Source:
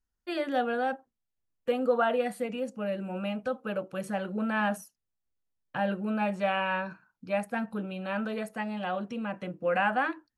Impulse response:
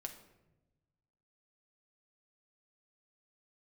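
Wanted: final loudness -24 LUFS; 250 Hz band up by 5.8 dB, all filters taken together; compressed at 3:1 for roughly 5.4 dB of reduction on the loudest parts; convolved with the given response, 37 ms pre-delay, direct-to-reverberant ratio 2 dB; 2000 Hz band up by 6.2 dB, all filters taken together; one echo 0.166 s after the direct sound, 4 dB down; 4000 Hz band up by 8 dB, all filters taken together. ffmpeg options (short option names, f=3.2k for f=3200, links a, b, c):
-filter_complex "[0:a]equalizer=f=250:t=o:g=7,equalizer=f=2k:t=o:g=6.5,equalizer=f=4k:t=o:g=8.5,acompressor=threshold=-25dB:ratio=3,aecho=1:1:166:0.631,asplit=2[a][b];[1:a]atrim=start_sample=2205,adelay=37[c];[b][c]afir=irnorm=-1:irlink=0,volume=1dB[d];[a][d]amix=inputs=2:normalize=0,volume=2dB"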